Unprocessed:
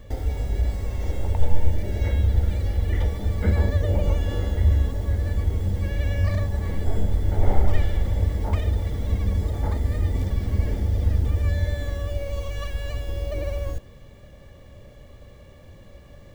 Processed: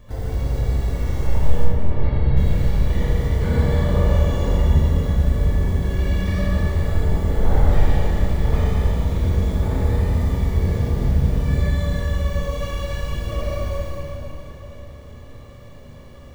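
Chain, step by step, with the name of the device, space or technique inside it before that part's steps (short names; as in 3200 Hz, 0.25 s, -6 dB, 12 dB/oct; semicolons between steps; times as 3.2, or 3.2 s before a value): shimmer-style reverb (harmoniser +12 st -10 dB; reverb RT60 3.8 s, pre-delay 12 ms, DRR -4 dB); 1.64–2.37 air absorption 300 m; Schroeder reverb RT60 0.97 s, combs from 26 ms, DRR 0 dB; gain -4 dB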